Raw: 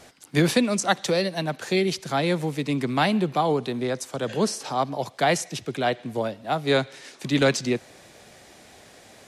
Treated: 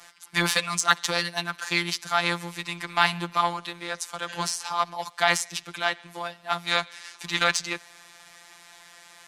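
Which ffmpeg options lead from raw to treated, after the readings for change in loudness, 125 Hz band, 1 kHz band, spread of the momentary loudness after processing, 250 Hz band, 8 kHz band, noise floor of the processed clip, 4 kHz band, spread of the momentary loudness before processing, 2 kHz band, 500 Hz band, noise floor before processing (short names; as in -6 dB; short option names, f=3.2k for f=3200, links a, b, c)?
-1.5 dB, -9.5 dB, +0.5 dB, 11 LU, -12.0 dB, +2.0 dB, -52 dBFS, +3.0 dB, 8 LU, +4.0 dB, -9.5 dB, -51 dBFS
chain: -af "afftfilt=real='hypot(re,im)*cos(PI*b)':imag='0':win_size=1024:overlap=0.75,aeval=exprs='0.531*(cos(1*acos(clip(val(0)/0.531,-1,1)))-cos(1*PI/2))+0.0168*(cos(5*acos(clip(val(0)/0.531,-1,1)))-cos(5*PI/2))+0.0237*(cos(7*acos(clip(val(0)/0.531,-1,1)))-cos(7*PI/2))+0.00531*(cos(8*acos(clip(val(0)/0.531,-1,1)))-cos(8*PI/2))':c=same,lowshelf=f=710:t=q:w=1.5:g=-12,volume=6dB"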